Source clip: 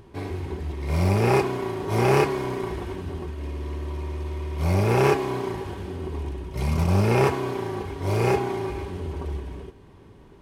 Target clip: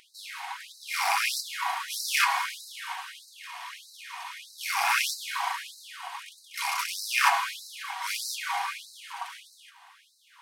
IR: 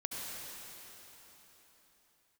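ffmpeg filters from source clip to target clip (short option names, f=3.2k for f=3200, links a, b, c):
-af "asoftclip=type=hard:threshold=-16dB,asubboost=boost=7:cutoff=140,afftfilt=real='re*gte(b*sr/1024,650*pow(3900/650,0.5+0.5*sin(2*PI*1.6*pts/sr)))':imag='im*gte(b*sr/1024,650*pow(3900/650,0.5+0.5*sin(2*PI*1.6*pts/sr)))':win_size=1024:overlap=0.75,volume=9dB"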